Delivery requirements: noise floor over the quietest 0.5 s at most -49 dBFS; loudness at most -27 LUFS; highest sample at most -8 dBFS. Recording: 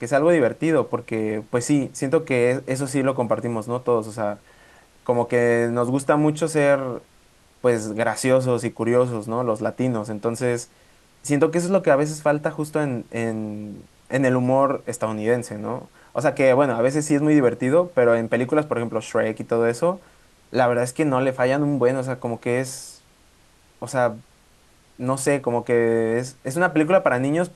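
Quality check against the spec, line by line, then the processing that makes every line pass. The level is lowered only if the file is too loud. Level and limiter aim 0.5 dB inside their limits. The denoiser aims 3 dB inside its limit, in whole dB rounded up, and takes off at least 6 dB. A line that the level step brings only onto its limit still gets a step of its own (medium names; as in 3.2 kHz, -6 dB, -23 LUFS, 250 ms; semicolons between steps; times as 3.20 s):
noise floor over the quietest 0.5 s -55 dBFS: pass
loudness -21.5 LUFS: fail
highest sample -3.5 dBFS: fail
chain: trim -6 dB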